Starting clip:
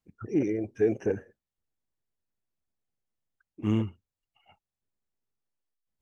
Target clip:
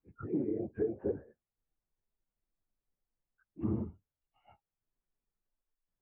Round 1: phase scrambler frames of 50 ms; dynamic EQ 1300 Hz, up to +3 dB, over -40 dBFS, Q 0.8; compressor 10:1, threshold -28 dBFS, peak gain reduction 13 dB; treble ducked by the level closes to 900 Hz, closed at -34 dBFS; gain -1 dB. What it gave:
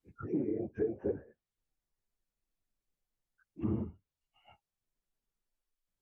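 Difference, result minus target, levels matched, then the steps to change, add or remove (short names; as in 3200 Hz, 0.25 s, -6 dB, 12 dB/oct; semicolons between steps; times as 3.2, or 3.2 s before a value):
2000 Hz band +2.5 dB
add after dynamic EQ: LPF 1700 Hz 12 dB/oct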